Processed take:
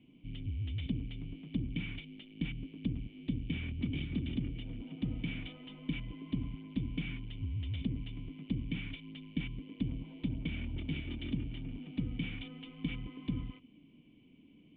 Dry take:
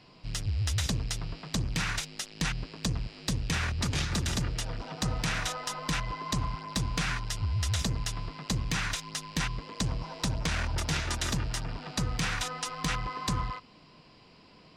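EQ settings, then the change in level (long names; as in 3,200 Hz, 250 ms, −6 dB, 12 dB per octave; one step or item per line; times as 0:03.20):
formant resonators in series i
+5.0 dB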